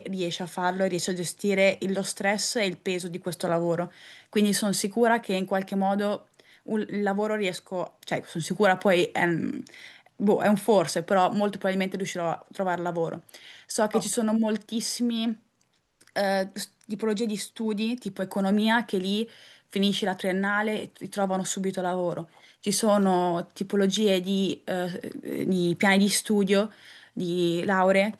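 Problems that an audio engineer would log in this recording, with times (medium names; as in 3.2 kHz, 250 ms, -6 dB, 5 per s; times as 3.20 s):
8.80 s: dropout 3 ms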